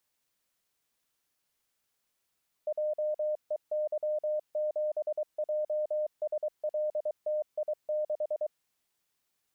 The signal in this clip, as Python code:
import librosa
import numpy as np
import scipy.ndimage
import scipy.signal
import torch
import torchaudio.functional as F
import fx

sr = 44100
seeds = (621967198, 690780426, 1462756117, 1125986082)

y = fx.morse(sr, text='JEY7JSLTI6', wpm=23, hz=608.0, level_db=-27.5)